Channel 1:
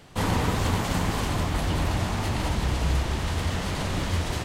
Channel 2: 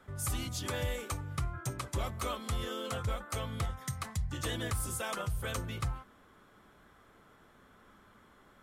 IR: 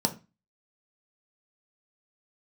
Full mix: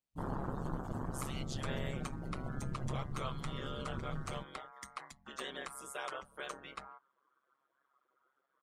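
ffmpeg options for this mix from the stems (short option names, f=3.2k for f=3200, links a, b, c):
-filter_complex "[0:a]aemphasis=mode=production:type=75kf,afwtdn=0.0631,volume=-10.5dB[a];[1:a]highpass=420,highshelf=f=7k:g=-9.5,adelay=950,volume=-0.5dB[b];[a][b]amix=inputs=2:normalize=0,afftdn=nr=19:nf=-53,aeval=exprs='val(0)*sin(2*PI*68*n/s)':c=same"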